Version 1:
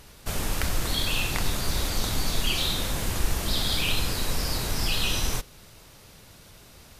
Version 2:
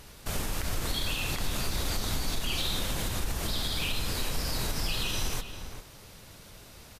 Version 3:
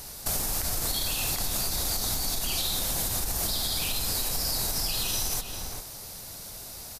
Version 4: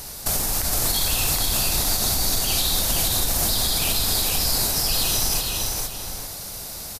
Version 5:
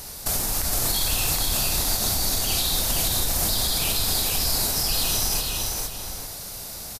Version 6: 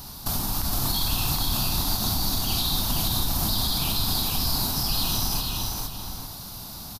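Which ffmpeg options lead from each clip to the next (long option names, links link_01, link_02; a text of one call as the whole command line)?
ffmpeg -i in.wav -filter_complex "[0:a]alimiter=limit=-21dB:level=0:latency=1:release=121,asplit=2[link_01][link_02];[link_02]adelay=396.5,volume=-9dB,highshelf=frequency=4000:gain=-8.92[link_03];[link_01][link_03]amix=inputs=2:normalize=0" out.wav
ffmpeg -i in.wav -af "equalizer=frequency=740:width_type=o:width=0.55:gain=6.5,aexciter=amount=2.9:drive=6.2:freq=4200,acompressor=threshold=-27dB:ratio=6,volume=2dB" out.wav
ffmpeg -i in.wav -af "aecho=1:1:463:0.668,volume=5.5dB" out.wav
ffmpeg -i in.wav -filter_complex "[0:a]asplit=2[link_01][link_02];[link_02]adelay=29,volume=-10.5dB[link_03];[link_01][link_03]amix=inputs=2:normalize=0,volume=-2dB" out.wav
ffmpeg -i in.wav -af "equalizer=frequency=125:width_type=o:width=1:gain=4,equalizer=frequency=250:width_type=o:width=1:gain=6,equalizer=frequency=500:width_type=o:width=1:gain=-11,equalizer=frequency=1000:width_type=o:width=1:gain=7,equalizer=frequency=2000:width_type=o:width=1:gain=-10,equalizer=frequency=4000:width_type=o:width=1:gain=4,equalizer=frequency=8000:width_type=o:width=1:gain=-10" out.wav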